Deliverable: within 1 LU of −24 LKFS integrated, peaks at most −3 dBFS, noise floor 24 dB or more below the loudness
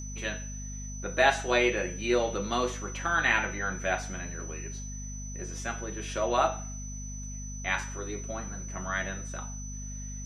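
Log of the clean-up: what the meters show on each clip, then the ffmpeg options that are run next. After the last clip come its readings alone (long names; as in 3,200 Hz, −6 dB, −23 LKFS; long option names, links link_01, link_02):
mains hum 50 Hz; hum harmonics up to 250 Hz; level of the hum −37 dBFS; interfering tone 6,000 Hz; level of the tone −42 dBFS; integrated loudness −31.0 LKFS; sample peak −7.0 dBFS; target loudness −24.0 LKFS
→ -af "bandreject=frequency=50:width_type=h:width=6,bandreject=frequency=100:width_type=h:width=6,bandreject=frequency=150:width_type=h:width=6,bandreject=frequency=200:width_type=h:width=6,bandreject=frequency=250:width_type=h:width=6"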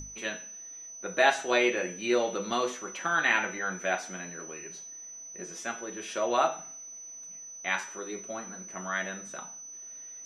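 mains hum none found; interfering tone 6,000 Hz; level of the tone −42 dBFS
→ -af "bandreject=frequency=6000:width=30"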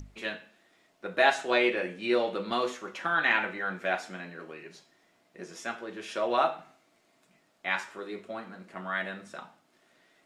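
interfering tone none found; integrated loudness −30.0 LKFS; sample peak −7.5 dBFS; target loudness −24.0 LKFS
→ -af "volume=6dB,alimiter=limit=-3dB:level=0:latency=1"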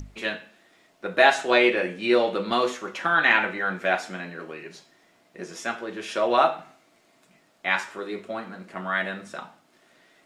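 integrated loudness −24.0 LKFS; sample peak −3.0 dBFS; background noise floor −62 dBFS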